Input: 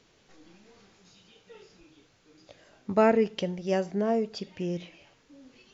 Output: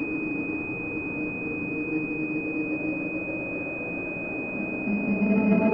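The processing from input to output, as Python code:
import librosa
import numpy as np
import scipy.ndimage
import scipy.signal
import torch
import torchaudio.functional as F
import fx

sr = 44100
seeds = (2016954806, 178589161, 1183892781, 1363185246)

y = x + 0.5 * 10.0 ** (-35.0 / 20.0) * np.sign(x)
y = fx.paulstretch(y, sr, seeds[0], factor=6.4, window_s=0.5, from_s=1.99)
y = fx.peak_eq(y, sr, hz=270.0, db=14.5, octaves=1.8)
y = fx.doubler(y, sr, ms=39.0, db=-12.0)
y = fx.pwm(y, sr, carrier_hz=2500.0)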